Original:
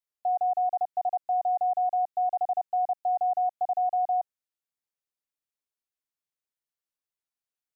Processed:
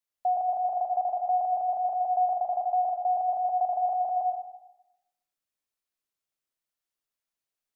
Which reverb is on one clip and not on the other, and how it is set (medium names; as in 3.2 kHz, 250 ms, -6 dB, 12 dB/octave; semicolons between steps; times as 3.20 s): algorithmic reverb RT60 0.92 s, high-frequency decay 0.9×, pre-delay 65 ms, DRR 2 dB; trim +1 dB